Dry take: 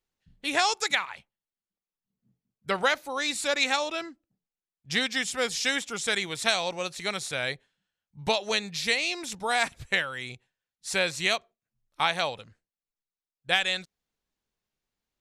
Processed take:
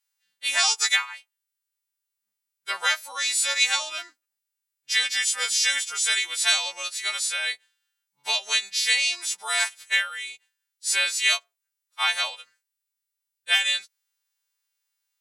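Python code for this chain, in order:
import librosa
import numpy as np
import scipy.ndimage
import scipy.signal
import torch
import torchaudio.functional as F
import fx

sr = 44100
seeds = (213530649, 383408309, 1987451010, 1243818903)

y = fx.freq_snap(x, sr, grid_st=2)
y = scipy.signal.sosfilt(scipy.signal.butter(2, 1100.0, 'highpass', fs=sr, output='sos'), y)
y = fx.quant_float(y, sr, bits=8)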